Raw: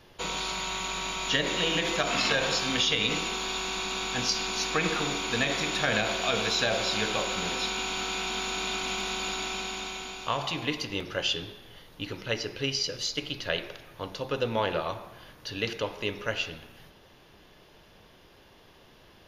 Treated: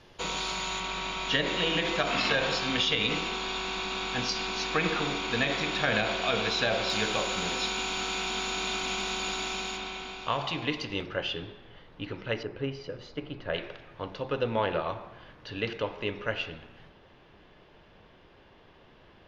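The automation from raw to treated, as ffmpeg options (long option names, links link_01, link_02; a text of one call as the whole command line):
ffmpeg -i in.wav -af "asetnsamples=nb_out_samples=441:pad=0,asendcmd='0.8 lowpass f 4400;6.9 lowpass f 8500;9.77 lowpass f 4300;11.06 lowpass f 2500;12.43 lowpass f 1400;13.54 lowpass f 2900',lowpass=7900" out.wav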